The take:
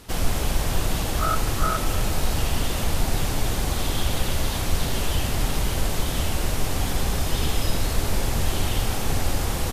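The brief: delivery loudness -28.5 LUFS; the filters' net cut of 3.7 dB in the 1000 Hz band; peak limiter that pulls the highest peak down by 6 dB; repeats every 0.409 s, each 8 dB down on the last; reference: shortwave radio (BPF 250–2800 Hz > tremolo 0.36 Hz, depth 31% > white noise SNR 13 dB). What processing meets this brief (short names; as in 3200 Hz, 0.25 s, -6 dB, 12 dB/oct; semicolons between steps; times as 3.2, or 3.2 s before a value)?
bell 1000 Hz -5 dB; limiter -14.5 dBFS; BPF 250–2800 Hz; feedback echo 0.409 s, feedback 40%, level -8 dB; tremolo 0.36 Hz, depth 31%; white noise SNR 13 dB; gain +6 dB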